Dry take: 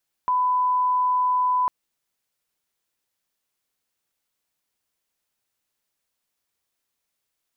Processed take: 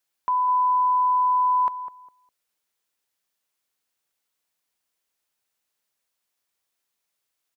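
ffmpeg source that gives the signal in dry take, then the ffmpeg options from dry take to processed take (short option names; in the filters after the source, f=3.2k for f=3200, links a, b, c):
-f lavfi -i "sine=f=1000:d=1.4:r=44100,volume=0.06dB"
-filter_complex "[0:a]lowshelf=f=290:g=-7,asplit=2[a][b];[b]adelay=203,lowpass=f=980:p=1,volume=-9.5dB,asplit=2[c][d];[d]adelay=203,lowpass=f=980:p=1,volume=0.28,asplit=2[e][f];[f]adelay=203,lowpass=f=980:p=1,volume=0.28[g];[a][c][e][g]amix=inputs=4:normalize=0"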